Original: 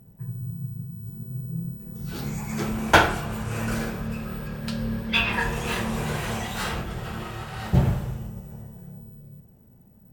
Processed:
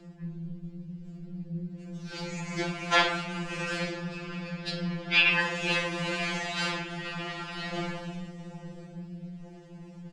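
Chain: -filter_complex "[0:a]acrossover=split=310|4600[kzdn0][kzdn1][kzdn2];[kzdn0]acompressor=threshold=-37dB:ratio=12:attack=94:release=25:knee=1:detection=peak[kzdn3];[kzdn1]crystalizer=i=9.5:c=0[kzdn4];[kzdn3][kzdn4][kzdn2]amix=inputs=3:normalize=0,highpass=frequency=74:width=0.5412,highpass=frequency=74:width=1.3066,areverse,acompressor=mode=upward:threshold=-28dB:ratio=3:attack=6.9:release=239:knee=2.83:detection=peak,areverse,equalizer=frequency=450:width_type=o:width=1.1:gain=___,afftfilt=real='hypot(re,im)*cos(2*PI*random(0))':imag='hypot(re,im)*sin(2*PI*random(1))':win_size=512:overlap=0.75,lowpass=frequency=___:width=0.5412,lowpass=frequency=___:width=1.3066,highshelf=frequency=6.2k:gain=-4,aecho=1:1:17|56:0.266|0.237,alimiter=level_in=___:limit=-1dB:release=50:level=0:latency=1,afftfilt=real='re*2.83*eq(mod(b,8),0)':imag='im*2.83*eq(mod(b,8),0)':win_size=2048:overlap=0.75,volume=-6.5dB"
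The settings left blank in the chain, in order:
4.5, 8.8k, 8.8k, 7dB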